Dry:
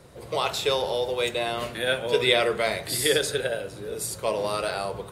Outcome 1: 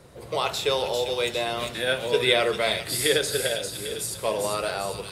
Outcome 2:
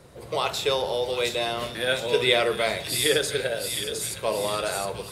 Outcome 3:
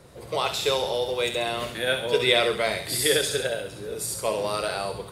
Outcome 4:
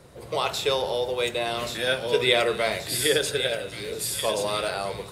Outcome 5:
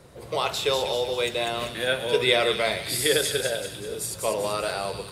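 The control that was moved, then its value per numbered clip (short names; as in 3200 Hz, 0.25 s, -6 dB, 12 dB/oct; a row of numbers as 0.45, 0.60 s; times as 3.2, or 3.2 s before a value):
thin delay, time: 399, 712, 67, 1130, 195 ms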